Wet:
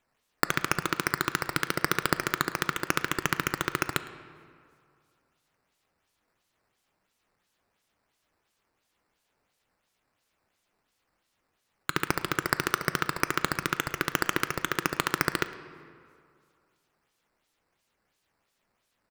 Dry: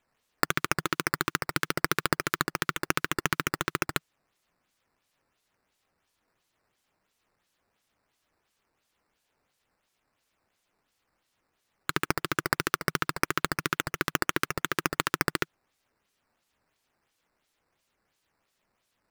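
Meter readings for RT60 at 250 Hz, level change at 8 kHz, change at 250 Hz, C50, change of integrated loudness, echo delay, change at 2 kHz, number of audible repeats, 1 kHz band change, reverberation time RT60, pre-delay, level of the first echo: 2.2 s, 0.0 dB, +0.5 dB, 12.0 dB, +0.5 dB, 108 ms, +0.5 dB, 1, +0.5 dB, 2.3 s, 14 ms, −21.5 dB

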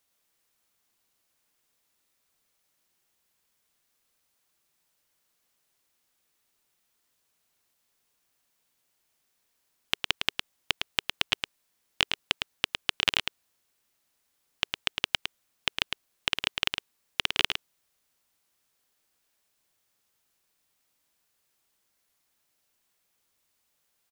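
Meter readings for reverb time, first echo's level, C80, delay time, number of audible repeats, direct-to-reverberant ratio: no reverb audible, −6.0 dB, no reverb audible, 108 ms, 1, no reverb audible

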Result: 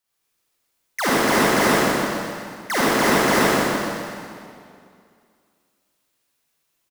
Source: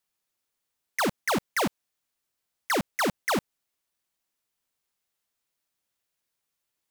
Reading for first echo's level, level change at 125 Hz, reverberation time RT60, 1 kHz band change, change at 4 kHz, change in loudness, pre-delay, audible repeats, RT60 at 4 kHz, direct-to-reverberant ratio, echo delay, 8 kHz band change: −2.0 dB, +10.5 dB, 2.3 s, +10.5 dB, +10.0 dB, +9.0 dB, 35 ms, 1, 2.1 s, −10.5 dB, 125 ms, +10.5 dB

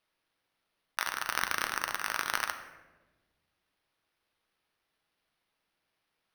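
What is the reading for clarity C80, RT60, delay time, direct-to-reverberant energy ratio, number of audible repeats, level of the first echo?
11.0 dB, 1.2 s, no echo audible, 7.0 dB, no echo audible, no echo audible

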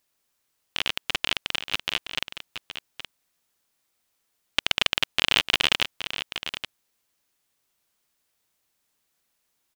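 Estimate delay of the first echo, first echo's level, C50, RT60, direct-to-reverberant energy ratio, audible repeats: 821 ms, −10.5 dB, no reverb audible, no reverb audible, no reverb audible, 1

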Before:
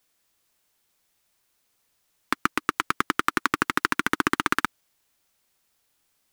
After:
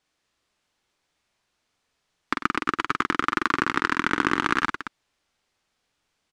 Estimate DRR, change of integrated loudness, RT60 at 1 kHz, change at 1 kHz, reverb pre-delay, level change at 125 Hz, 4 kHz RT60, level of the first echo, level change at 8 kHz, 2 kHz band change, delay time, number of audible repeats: no reverb audible, +1.0 dB, no reverb audible, +1.0 dB, no reverb audible, +1.5 dB, no reverb audible, −4.5 dB, −6.0 dB, +1.0 dB, 46 ms, 3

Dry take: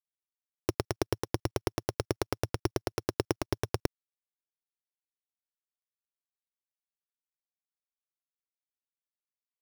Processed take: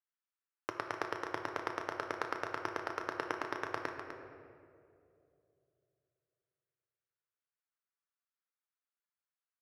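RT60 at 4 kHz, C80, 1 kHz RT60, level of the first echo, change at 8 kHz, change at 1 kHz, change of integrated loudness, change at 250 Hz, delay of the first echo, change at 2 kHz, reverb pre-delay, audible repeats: 1.3 s, 5.0 dB, 2.1 s, −10.0 dB, −14.5 dB, +1.5 dB, −5.5 dB, −10.5 dB, 251 ms, +3.5 dB, 7 ms, 1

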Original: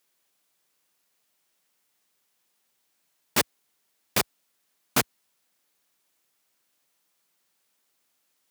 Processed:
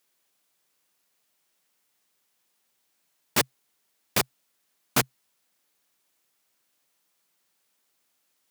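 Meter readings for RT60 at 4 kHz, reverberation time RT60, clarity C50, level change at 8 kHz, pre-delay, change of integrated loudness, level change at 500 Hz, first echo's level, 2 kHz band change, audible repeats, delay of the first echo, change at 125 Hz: no reverb audible, no reverb audible, no reverb audible, 0.0 dB, no reverb audible, 0.0 dB, 0.0 dB, no echo audible, 0.0 dB, no echo audible, no echo audible, +2.5 dB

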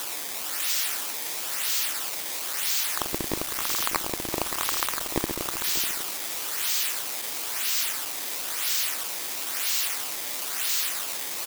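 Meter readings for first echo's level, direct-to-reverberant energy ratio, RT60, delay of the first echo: −16.0 dB, no reverb audible, no reverb audible, 379 ms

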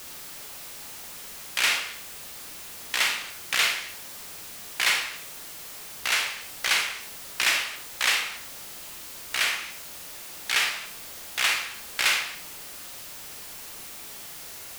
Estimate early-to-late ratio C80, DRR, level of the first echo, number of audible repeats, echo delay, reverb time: 11.0 dB, 3.0 dB, no echo audible, no echo audible, no echo audible, 0.50 s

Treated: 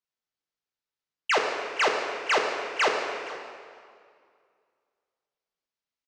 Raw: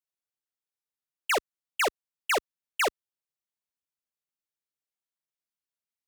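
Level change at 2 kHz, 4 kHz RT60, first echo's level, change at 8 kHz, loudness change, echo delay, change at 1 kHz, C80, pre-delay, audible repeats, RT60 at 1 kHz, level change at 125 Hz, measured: +4.0 dB, 1.8 s, −18.5 dB, −2.5 dB, +3.0 dB, 471 ms, +4.0 dB, 4.5 dB, 4 ms, 1, 2.2 s, can't be measured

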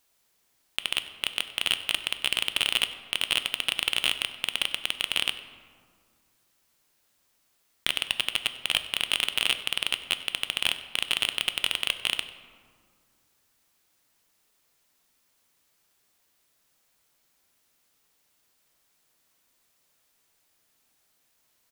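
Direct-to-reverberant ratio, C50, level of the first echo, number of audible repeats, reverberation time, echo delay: 9.5 dB, 11.5 dB, −19.5 dB, 1, 2.0 s, 96 ms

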